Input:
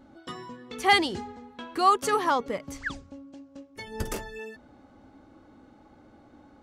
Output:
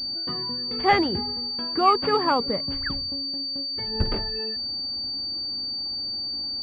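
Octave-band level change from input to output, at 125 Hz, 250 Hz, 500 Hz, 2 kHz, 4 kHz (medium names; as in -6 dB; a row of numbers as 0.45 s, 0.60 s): +8.5 dB, +5.5 dB, +4.0 dB, -1.5 dB, +12.0 dB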